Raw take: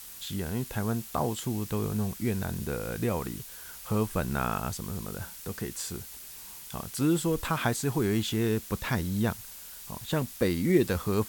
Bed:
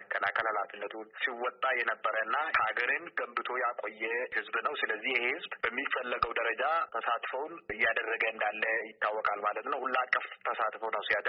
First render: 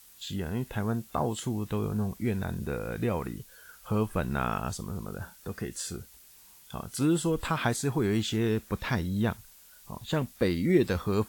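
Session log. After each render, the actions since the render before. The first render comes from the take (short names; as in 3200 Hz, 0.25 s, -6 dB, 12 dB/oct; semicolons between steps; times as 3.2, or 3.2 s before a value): noise print and reduce 10 dB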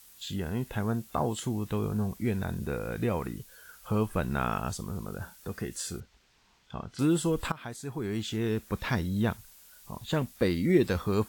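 6–6.99 air absorption 170 m; 7.52–8.82 fade in linear, from -18 dB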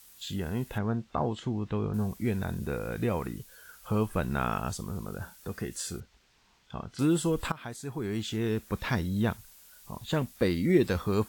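0.78–1.94 air absorption 160 m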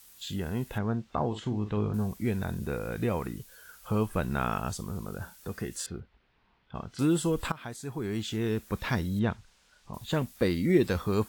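1.28–1.95 doubler 48 ms -9 dB; 5.86–6.75 air absorption 350 m; 9.19–9.94 air absorption 110 m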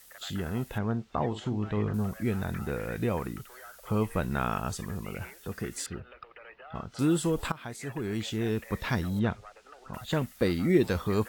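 add bed -18.5 dB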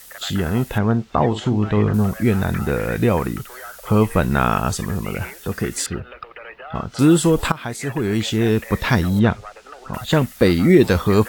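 gain +12 dB; limiter -2 dBFS, peak gain reduction 2.5 dB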